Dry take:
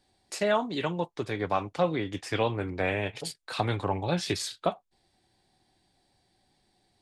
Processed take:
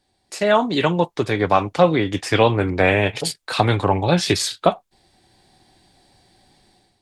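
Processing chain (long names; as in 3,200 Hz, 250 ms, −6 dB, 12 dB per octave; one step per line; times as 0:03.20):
automatic gain control gain up to 12.5 dB
level +1 dB
Opus 256 kbit/s 48,000 Hz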